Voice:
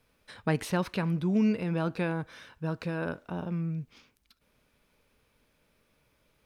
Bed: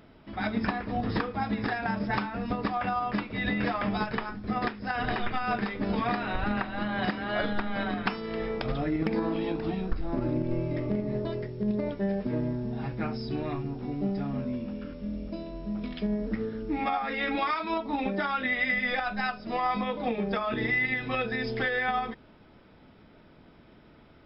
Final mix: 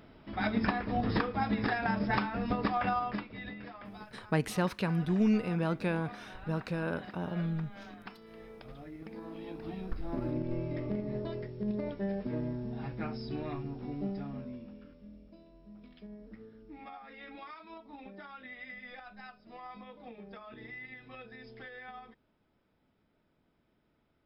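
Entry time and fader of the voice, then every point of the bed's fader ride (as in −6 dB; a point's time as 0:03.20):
3.85 s, −1.5 dB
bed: 0:02.92 −1 dB
0:03.64 −18 dB
0:09.06 −18 dB
0:10.05 −5.5 dB
0:14.00 −5.5 dB
0:15.30 −19 dB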